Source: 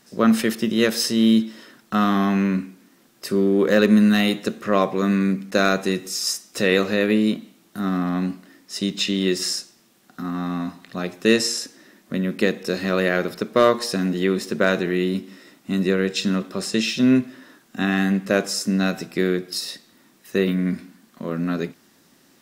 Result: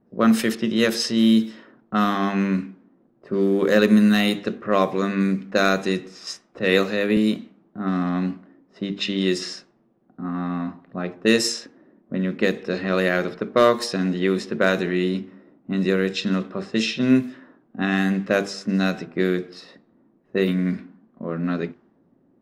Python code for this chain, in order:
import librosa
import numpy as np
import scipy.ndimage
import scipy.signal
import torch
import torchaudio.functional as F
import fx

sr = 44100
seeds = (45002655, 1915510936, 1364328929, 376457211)

y = fx.hum_notches(x, sr, base_hz=50, count=9)
y = fx.env_lowpass(y, sr, base_hz=500.0, full_db=-15.5)
y = fx.band_widen(y, sr, depth_pct=70, at=(6.59, 7.17))